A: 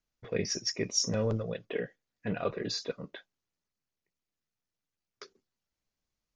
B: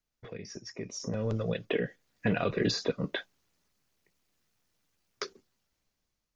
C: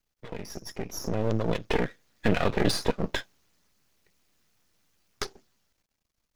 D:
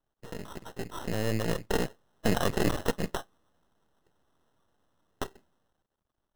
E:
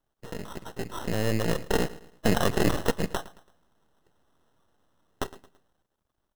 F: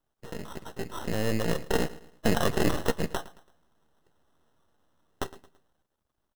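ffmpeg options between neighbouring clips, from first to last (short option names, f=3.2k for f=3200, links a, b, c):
-filter_complex "[0:a]acrossover=split=360|1700[a][b][c];[a]acompressor=threshold=-37dB:ratio=4[d];[b]acompressor=threshold=-43dB:ratio=4[e];[c]acompressor=threshold=-46dB:ratio=4[f];[d][e][f]amix=inputs=3:normalize=0,alimiter=level_in=6dB:limit=-24dB:level=0:latency=1:release=318,volume=-6dB,dynaudnorm=f=390:g=7:m=13.5dB"
-af "aeval=exprs='max(val(0),0)':c=same,volume=7.5dB"
-af "acrusher=samples=19:mix=1:aa=0.000001,volume=-2.5dB"
-af "aecho=1:1:111|222|333:0.126|0.0491|0.0191,volume=3dB"
-filter_complex "[0:a]asplit=2[a][b];[b]adelay=13,volume=-13.5dB[c];[a][c]amix=inputs=2:normalize=0,volume=-1.5dB"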